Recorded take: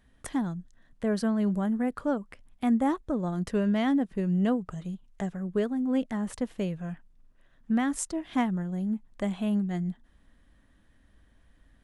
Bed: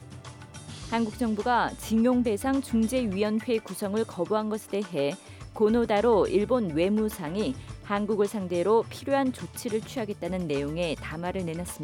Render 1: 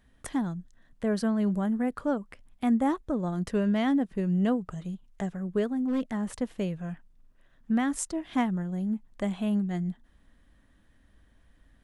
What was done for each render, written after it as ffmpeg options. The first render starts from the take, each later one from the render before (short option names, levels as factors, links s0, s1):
-filter_complex "[0:a]asettb=1/sr,asplit=3[s0][s1][s2];[s0]atrim=end=5.734[s3];[s1]atrim=start=5.73:end=6.31,asetpts=PTS-STARTPTS,afade=t=in:d=0.004:c=qsin,afade=t=out:st=0.576:d=0.004:c=qsin,asoftclip=type=hard:threshold=0.0668[s4];[s2]atrim=start=6.306[s5];[s3][s4]acrossfade=d=0.004:c1=hsin:c2=qsin[s6];[s6][s5]acrossfade=d=0.004:c1=qsin:c2=hsin"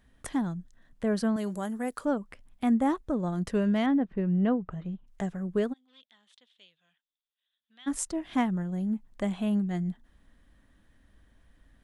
-filter_complex "[0:a]asettb=1/sr,asplit=3[s0][s1][s2];[s0]atrim=end=1.364[s3];[s1]atrim=start=1.36:end=2.05,asetpts=PTS-STARTPTS,afade=t=in:d=0.004:c=qsin,afade=t=out:st=0.686:d=0.004:c=qsin,bass=f=250:g=-11,treble=f=4000:g=12[s4];[s2]atrim=start=2.046[s5];[s3][s4]acrossfade=d=0.004:c1=hsin:c2=qsin[s6];[s6][s5]acrossfade=d=0.004:c1=qsin:c2=hsin,asettb=1/sr,asplit=3[s7][s8][s9];[s7]atrim=end=3.864[s10];[s8]atrim=start=3.86:end=5.07,asetpts=PTS-STARTPTS,afade=t=in:d=0.004:c=qsin,afade=t=out:st=1.206:d=0.004:c=qsin,lowpass=2500[s11];[s9]atrim=start=5.066[s12];[s10][s11]acrossfade=d=0.004:c1=hsin:c2=qsin[s13];[s13][s12]acrossfade=d=0.004:c1=qsin:c2=hsin,asplit=3[s14][s15][s16];[s14]afade=t=out:st=5.72:d=0.02[s17];[s15]bandpass=f=3500:t=q:w=7.4,afade=t=in:st=5.72:d=0.02,afade=t=out:st=7.86:d=0.02[s18];[s16]afade=t=in:st=7.86:d=0.02[s19];[s17][s18][s19]amix=inputs=3:normalize=0"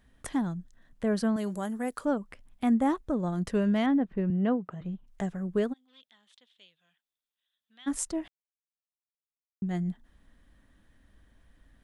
-filter_complex "[0:a]asettb=1/sr,asplit=3[s0][s1][s2];[s0]atrim=end=4.304[s3];[s1]atrim=start=4.3:end=4.81,asetpts=PTS-STARTPTS,afade=t=in:d=0.004:c=qsin,afade=t=out:st=0.506:d=0.004:c=qsin,highpass=170[s4];[s2]atrim=start=4.806[s5];[s3][s4]acrossfade=d=0.004:c1=hsin:c2=qsin[s6];[s6][s5]acrossfade=d=0.004:c1=qsin:c2=hsin,asplit=3[s7][s8][s9];[s7]atrim=end=8.28,asetpts=PTS-STARTPTS,afade=t=out:st=8.276:d=0.004:c=hsin[s10];[s8]atrim=start=8.28:end=9.62,asetpts=PTS-STARTPTS,volume=0[s11];[s9]atrim=start=9.62,asetpts=PTS-STARTPTS,afade=t=in:d=0.004:c=hsin[s12];[s10][s11][s12]concat=n=3:v=0:a=1"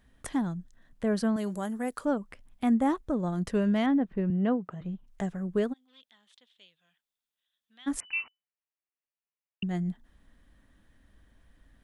-filter_complex "[0:a]asettb=1/sr,asplit=3[s0][s1][s2];[s0]atrim=end=8.004[s3];[s1]atrim=start=8:end=9.63,asetpts=PTS-STARTPTS,afade=t=in:d=0.004:c=qsin,afade=t=out:st=1.626:d=0.004:c=qsin,lowpass=f=2600:t=q:w=0.5098,lowpass=f=2600:t=q:w=0.6013,lowpass=f=2600:t=q:w=0.9,lowpass=f=2600:t=q:w=2.563,afreqshift=-3000[s4];[s2]atrim=start=9.626[s5];[s3][s4]acrossfade=d=0.004:c1=hsin:c2=qsin[s6];[s6][s5]acrossfade=d=0.004:c1=qsin:c2=hsin"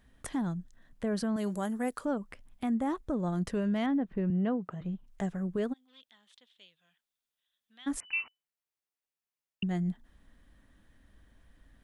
-af "alimiter=limit=0.0668:level=0:latency=1:release=104"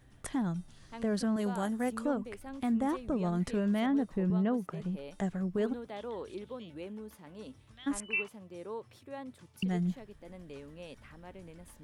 -filter_complex "[1:a]volume=0.119[s0];[0:a][s0]amix=inputs=2:normalize=0"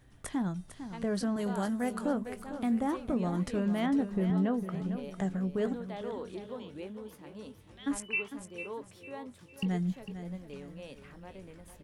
-filter_complex "[0:a]asplit=2[s0][s1];[s1]adelay=21,volume=0.2[s2];[s0][s2]amix=inputs=2:normalize=0,aecho=1:1:452|904|1356|1808:0.282|0.0986|0.0345|0.0121"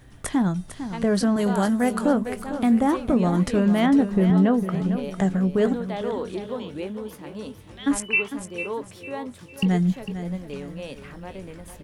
-af "volume=3.35"